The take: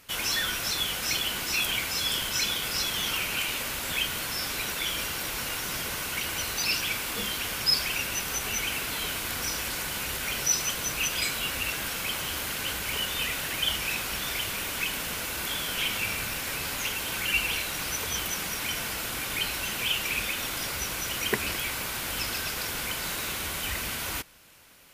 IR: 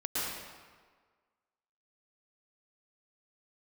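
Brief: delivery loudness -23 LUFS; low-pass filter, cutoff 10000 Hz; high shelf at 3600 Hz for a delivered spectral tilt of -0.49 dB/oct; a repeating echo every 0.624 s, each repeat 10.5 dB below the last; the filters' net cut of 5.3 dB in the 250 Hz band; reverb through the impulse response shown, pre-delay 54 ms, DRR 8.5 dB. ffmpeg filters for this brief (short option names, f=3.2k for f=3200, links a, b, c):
-filter_complex "[0:a]lowpass=10k,equalizer=f=250:t=o:g=-7.5,highshelf=f=3.6k:g=7.5,aecho=1:1:624|1248|1872:0.299|0.0896|0.0269,asplit=2[a][b];[1:a]atrim=start_sample=2205,adelay=54[c];[b][c]afir=irnorm=-1:irlink=0,volume=-15.5dB[d];[a][d]amix=inputs=2:normalize=0,volume=1dB"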